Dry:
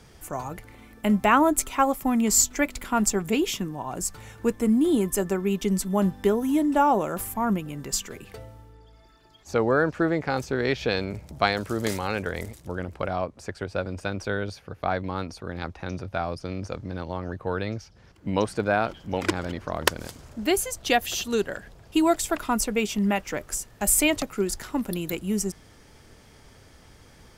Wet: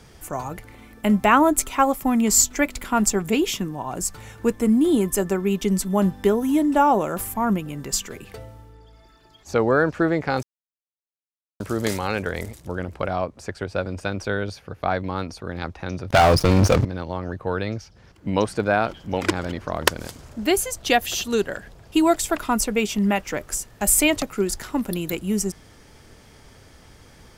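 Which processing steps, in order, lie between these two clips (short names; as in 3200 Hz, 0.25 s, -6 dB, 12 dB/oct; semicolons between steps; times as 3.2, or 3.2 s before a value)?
10.43–11.6 mute; 16.1–16.85 sample leveller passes 5; gain +3 dB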